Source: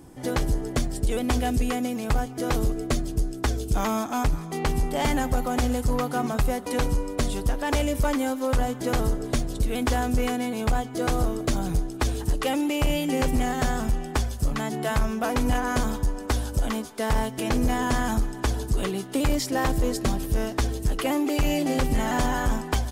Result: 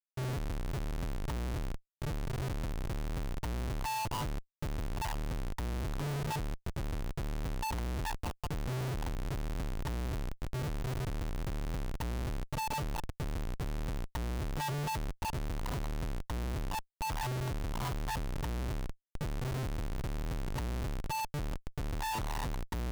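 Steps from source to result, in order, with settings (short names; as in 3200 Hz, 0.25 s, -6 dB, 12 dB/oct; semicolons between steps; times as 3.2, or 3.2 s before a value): FFT band-reject 150–870 Hz; vocal tract filter u; Schmitt trigger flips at -54 dBFS; gain +7.5 dB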